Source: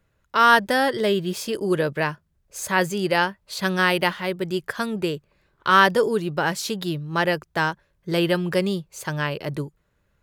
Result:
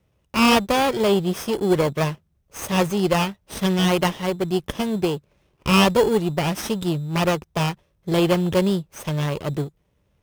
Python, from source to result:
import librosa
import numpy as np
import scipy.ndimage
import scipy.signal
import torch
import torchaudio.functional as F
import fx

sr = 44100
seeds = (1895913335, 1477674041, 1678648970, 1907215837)

p1 = fx.lower_of_two(x, sr, delay_ms=0.35)
p2 = scipy.signal.sosfilt(scipy.signal.butter(2, 40.0, 'highpass', fs=sr, output='sos'), p1)
p3 = fx.sample_hold(p2, sr, seeds[0], rate_hz=3800.0, jitter_pct=0)
y = p2 + (p3 * 10.0 ** (-5.0 / 20.0))